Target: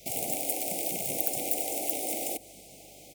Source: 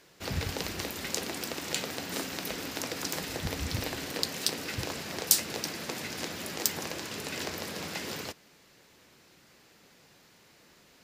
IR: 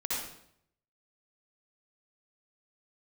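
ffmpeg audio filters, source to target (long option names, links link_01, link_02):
-filter_complex "[0:a]acrossover=split=390|3000[link_01][link_02][link_03];[link_02]acompressor=threshold=-59dB:ratio=2[link_04];[link_01][link_04][link_03]amix=inputs=3:normalize=0,asetrate=154791,aresample=44100,lowshelf=frequency=350:gain=5.5,afftfilt=real='re*lt(hypot(re,im),0.0447)':imag='im*lt(hypot(re,im),0.0447)':win_size=1024:overlap=0.75,acontrast=35,aeval=exprs='val(0)+0.000631*(sin(2*PI*50*n/s)+sin(2*PI*2*50*n/s)/2+sin(2*PI*3*50*n/s)/3+sin(2*PI*4*50*n/s)/4+sin(2*PI*5*50*n/s)/5)':channel_layout=same,asuperstop=centerf=1300:order=20:qfactor=1,asplit=2[link_05][link_06];[link_06]adelay=1633,volume=-18dB,highshelf=frequency=4000:gain=-36.7[link_07];[link_05][link_07]amix=inputs=2:normalize=0,adynamicequalizer=threshold=0.00126:dfrequency=8900:dqfactor=2.3:tfrequency=8900:tqfactor=2.3:attack=5:release=100:ratio=0.375:range=2.5:mode=boostabove:tftype=bell,highpass=52,volume=3.5dB"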